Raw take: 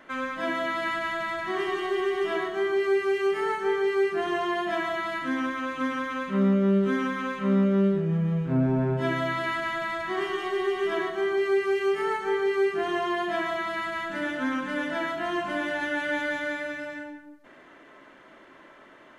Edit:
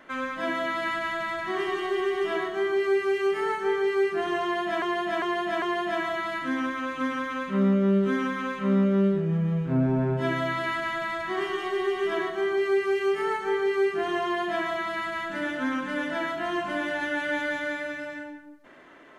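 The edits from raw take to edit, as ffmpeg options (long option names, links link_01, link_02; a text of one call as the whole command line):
ffmpeg -i in.wav -filter_complex "[0:a]asplit=4[link_01][link_02][link_03][link_04];[link_01]atrim=end=4.822[link_05];[link_02]atrim=start=4.418:end=4.822[link_06];[link_03]atrim=start=4.418:end=4.822[link_07];[link_04]atrim=start=4.418[link_08];[link_05][link_06]acrossfade=duration=0.004:curve1=hsin:curve2=hsin[link_09];[link_09][link_07]acrossfade=duration=0.004:curve1=hsin:curve2=hsin[link_10];[link_10][link_08]acrossfade=duration=0.004:curve1=hsin:curve2=hsin" out.wav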